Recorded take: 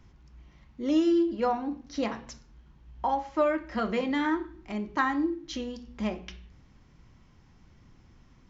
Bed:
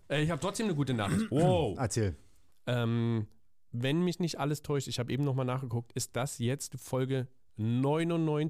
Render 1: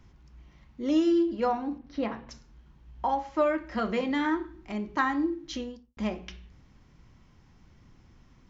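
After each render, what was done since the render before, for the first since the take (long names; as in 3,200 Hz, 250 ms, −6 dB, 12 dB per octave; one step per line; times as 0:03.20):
0:01.78–0:02.31: high-frequency loss of the air 250 metres
0:05.55–0:05.97: fade out and dull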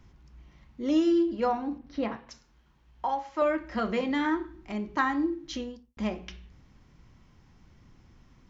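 0:02.16–0:03.42: low-shelf EQ 360 Hz −10 dB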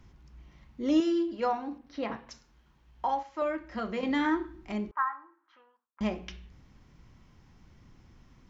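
0:01.00–0:02.10: low-shelf EQ 280 Hz −10.5 dB
0:03.23–0:04.03: clip gain −5 dB
0:04.91–0:06.01: flat-topped band-pass 1,200 Hz, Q 2.1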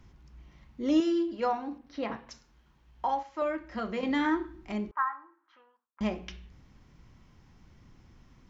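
no processing that can be heard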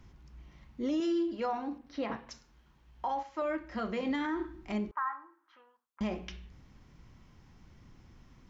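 brickwall limiter −25 dBFS, peak gain reduction 9.5 dB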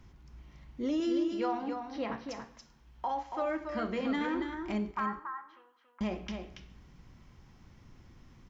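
single-tap delay 281 ms −6.5 dB
four-comb reverb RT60 0.9 s, combs from 31 ms, DRR 17 dB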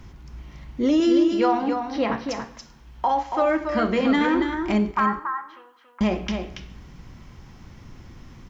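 level +12 dB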